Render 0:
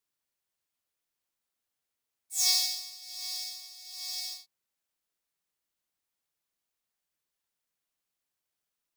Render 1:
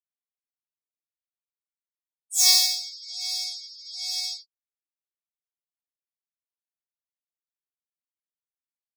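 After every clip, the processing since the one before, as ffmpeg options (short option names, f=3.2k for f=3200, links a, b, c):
-af "afftdn=nr=35:nf=-45,volume=8dB"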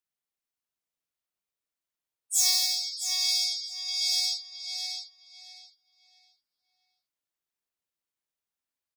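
-filter_complex "[0:a]acompressor=threshold=-25dB:ratio=5,asplit=2[a][b];[b]adelay=663,lowpass=f=3.6k:p=1,volume=-3dB,asplit=2[c][d];[d]adelay=663,lowpass=f=3.6k:p=1,volume=0.31,asplit=2[e][f];[f]adelay=663,lowpass=f=3.6k:p=1,volume=0.31,asplit=2[g][h];[h]adelay=663,lowpass=f=3.6k:p=1,volume=0.31[i];[c][e][g][i]amix=inputs=4:normalize=0[j];[a][j]amix=inputs=2:normalize=0,volume=3.5dB"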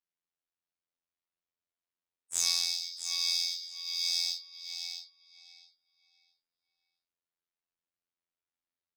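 -af "afftfilt=real='hypot(re,im)*cos(PI*b)':imag='0':win_size=2048:overlap=0.75,adynamicsmooth=sensitivity=5:basefreq=5.4k"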